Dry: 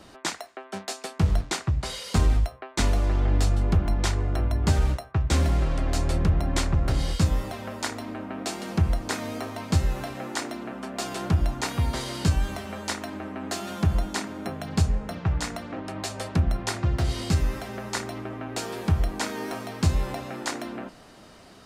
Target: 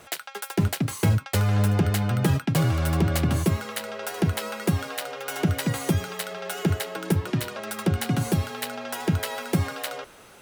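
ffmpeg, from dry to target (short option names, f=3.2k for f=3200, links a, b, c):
-af "asetrate=91728,aresample=44100"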